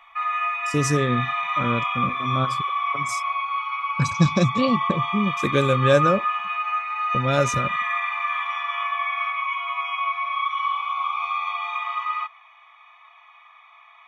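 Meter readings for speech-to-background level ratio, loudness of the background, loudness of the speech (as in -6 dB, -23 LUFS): 1.5 dB, -25.0 LUFS, -23.5 LUFS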